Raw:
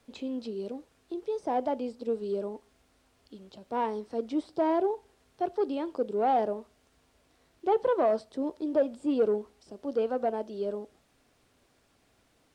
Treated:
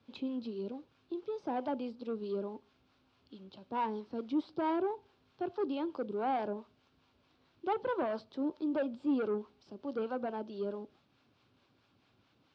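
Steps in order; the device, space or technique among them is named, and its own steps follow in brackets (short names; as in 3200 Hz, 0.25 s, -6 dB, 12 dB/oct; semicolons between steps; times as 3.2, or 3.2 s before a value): guitar amplifier with harmonic tremolo (harmonic tremolo 4.6 Hz, depth 50%, crossover 560 Hz; soft clip -24.5 dBFS, distortion -16 dB; speaker cabinet 100–4500 Hz, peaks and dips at 110 Hz +6 dB, 460 Hz -6 dB, 670 Hz -7 dB, 1900 Hz -8 dB); gain +1.5 dB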